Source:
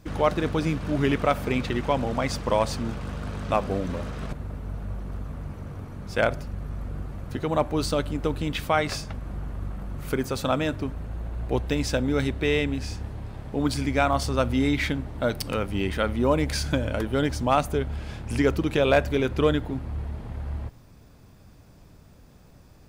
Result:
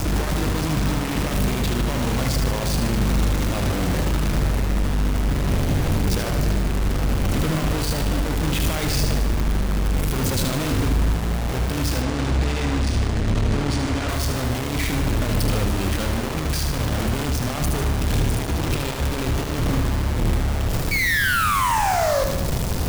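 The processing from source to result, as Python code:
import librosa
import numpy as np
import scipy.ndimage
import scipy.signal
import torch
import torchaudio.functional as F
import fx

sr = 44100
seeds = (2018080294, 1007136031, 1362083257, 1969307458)

y = fx.peak_eq(x, sr, hz=1000.0, db=-6.0, octaves=2.2)
y = fx.spec_paint(y, sr, seeds[0], shape='fall', start_s=20.91, length_s=1.33, low_hz=520.0, high_hz=2300.0, level_db=-40.0)
y = fx.over_compress(y, sr, threshold_db=-38.0, ratio=-1.0)
y = fx.low_shelf(y, sr, hz=230.0, db=8.5)
y = fx.quant_companded(y, sr, bits=2)
y = fx.echo_feedback(y, sr, ms=76, feedback_pct=57, wet_db=-6)
y = fx.resample_linear(y, sr, factor=3, at=(12.02, 14.09))
y = y * 10.0 ** (5.0 / 20.0)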